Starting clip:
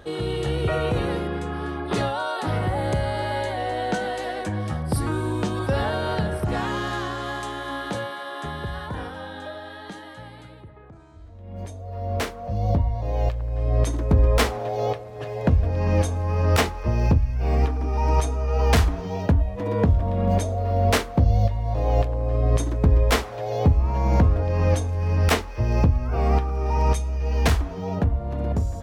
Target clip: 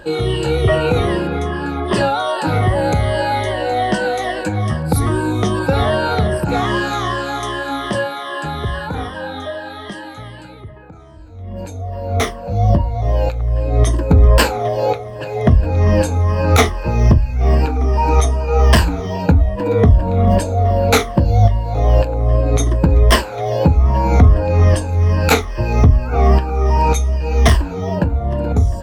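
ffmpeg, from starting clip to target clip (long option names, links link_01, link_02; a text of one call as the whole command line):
ffmpeg -i in.wav -af "afftfilt=real='re*pow(10,13/40*sin(2*PI*(1.3*log(max(b,1)*sr/1024/100)/log(2)-(-2.5)*(pts-256)/sr)))':imag='im*pow(10,13/40*sin(2*PI*(1.3*log(max(b,1)*sr/1024/100)/log(2)-(-2.5)*(pts-256)/sr)))':win_size=1024:overlap=0.75,asoftclip=type=tanh:threshold=-6dB,volume=6.5dB" out.wav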